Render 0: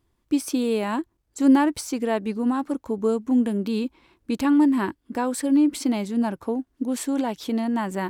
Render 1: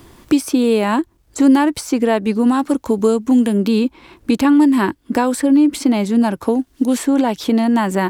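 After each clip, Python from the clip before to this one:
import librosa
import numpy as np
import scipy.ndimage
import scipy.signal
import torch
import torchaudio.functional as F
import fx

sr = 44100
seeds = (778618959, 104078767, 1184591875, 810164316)

y = fx.band_squash(x, sr, depth_pct=70)
y = y * 10.0 ** (8.0 / 20.0)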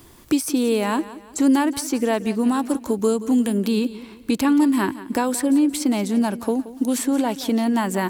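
y = fx.high_shelf(x, sr, hz=5700.0, db=9.0)
y = fx.echo_feedback(y, sr, ms=176, feedback_pct=40, wet_db=-16.0)
y = y * 10.0 ** (-5.5 / 20.0)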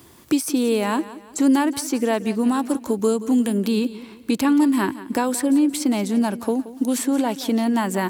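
y = scipy.signal.sosfilt(scipy.signal.butter(2, 80.0, 'highpass', fs=sr, output='sos'), x)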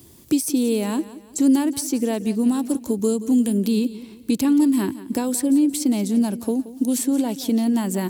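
y = fx.peak_eq(x, sr, hz=1300.0, db=-13.5, octaves=2.5)
y = y * 10.0 ** (3.0 / 20.0)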